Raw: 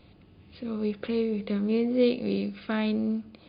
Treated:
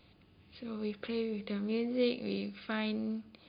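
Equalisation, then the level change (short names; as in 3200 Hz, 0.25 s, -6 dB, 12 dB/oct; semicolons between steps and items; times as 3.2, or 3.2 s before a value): bell 1400 Hz +3 dB 1.8 oct; high shelf 2800 Hz +8.5 dB; -8.5 dB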